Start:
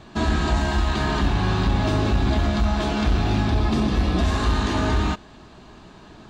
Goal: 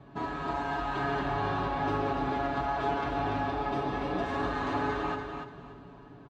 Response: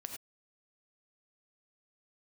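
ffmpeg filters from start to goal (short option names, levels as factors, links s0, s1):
-filter_complex "[0:a]highpass=45,acrossover=split=390[s0][s1];[s0]acompressor=threshold=0.0251:ratio=12[s2];[s2][s1]amix=inputs=2:normalize=0,equalizer=f=7100:t=o:w=3:g=-11.5,dynaudnorm=f=110:g=11:m=1.5,highshelf=f=3800:g=-11.5,aecho=1:1:7.1:0.85,asplit=2[s3][s4];[s4]aecho=0:1:290|580|870:0.501|0.125|0.0313[s5];[s3][s5]amix=inputs=2:normalize=0,volume=0.447"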